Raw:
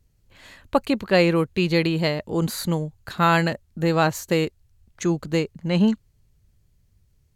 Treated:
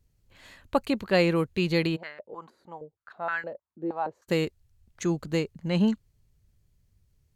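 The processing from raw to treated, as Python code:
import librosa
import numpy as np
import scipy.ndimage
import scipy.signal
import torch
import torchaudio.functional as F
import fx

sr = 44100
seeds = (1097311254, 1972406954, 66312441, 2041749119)

y = fx.filter_held_bandpass(x, sr, hz=6.4, low_hz=350.0, high_hz=1600.0, at=(1.95, 4.27), fade=0.02)
y = y * librosa.db_to_amplitude(-4.5)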